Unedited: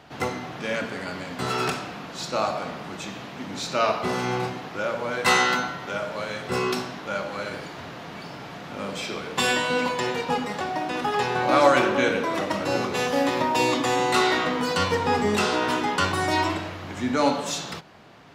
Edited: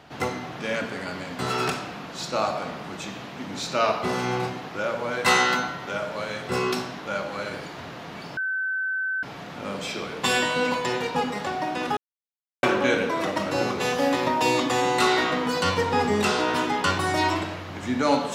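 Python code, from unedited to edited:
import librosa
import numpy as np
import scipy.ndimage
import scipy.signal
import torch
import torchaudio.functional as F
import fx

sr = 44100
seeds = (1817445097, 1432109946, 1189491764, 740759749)

y = fx.edit(x, sr, fx.insert_tone(at_s=8.37, length_s=0.86, hz=1530.0, db=-24.0),
    fx.silence(start_s=11.11, length_s=0.66), tone=tone)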